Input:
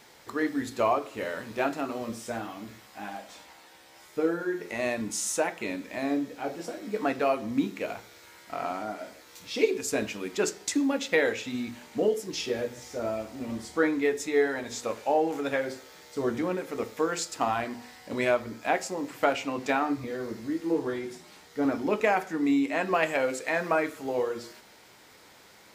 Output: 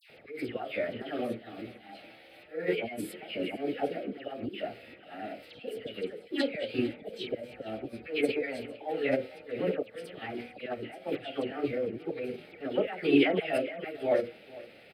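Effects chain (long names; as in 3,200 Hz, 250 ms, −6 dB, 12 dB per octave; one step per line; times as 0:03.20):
volume swells 421 ms
bass and treble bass −13 dB, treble −15 dB
time stretch by overlap-add 0.58×, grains 100 ms
parametric band 120 Hz +10 dB 2.9 octaves
phaser with its sweep stopped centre 2,400 Hz, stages 4
all-pass dispersion lows, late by 99 ms, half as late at 1,700 Hz
formants moved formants +3 semitones
on a send: single-tap delay 451 ms −19.5 dB
on the sum: level +6 dB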